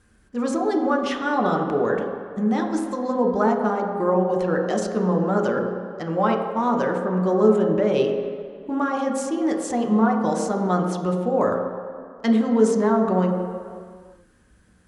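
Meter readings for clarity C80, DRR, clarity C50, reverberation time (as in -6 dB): 5.5 dB, 1.0 dB, 4.5 dB, no single decay rate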